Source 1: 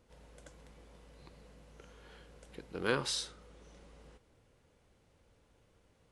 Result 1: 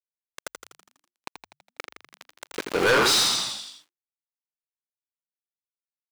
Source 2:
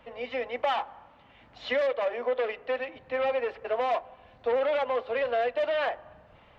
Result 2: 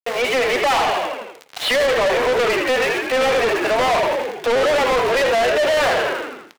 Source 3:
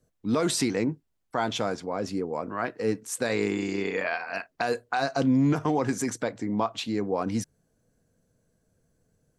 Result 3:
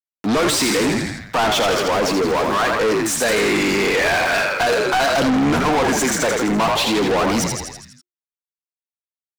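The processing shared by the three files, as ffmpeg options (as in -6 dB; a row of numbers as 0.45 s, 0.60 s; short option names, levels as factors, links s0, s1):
-filter_complex "[0:a]aeval=exprs='val(0)*gte(abs(val(0)),0.00531)':c=same,asplit=8[s0][s1][s2][s3][s4][s5][s6][s7];[s1]adelay=82,afreqshift=-51,volume=0.422[s8];[s2]adelay=164,afreqshift=-102,volume=0.245[s9];[s3]adelay=246,afreqshift=-153,volume=0.141[s10];[s4]adelay=328,afreqshift=-204,volume=0.0822[s11];[s5]adelay=410,afreqshift=-255,volume=0.0479[s12];[s6]adelay=492,afreqshift=-306,volume=0.0275[s13];[s7]adelay=574,afreqshift=-357,volume=0.016[s14];[s0][s8][s9][s10][s11][s12][s13][s14]amix=inputs=8:normalize=0,asplit=2[s15][s16];[s16]highpass=f=720:p=1,volume=39.8,asoftclip=type=tanh:threshold=0.299[s17];[s15][s17]amix=inputs=2:normalize=0,lowpass=f=6000:p=1,volume=0.501"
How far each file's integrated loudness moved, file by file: +15.0 LU, +11.5 LU, +10.5 LU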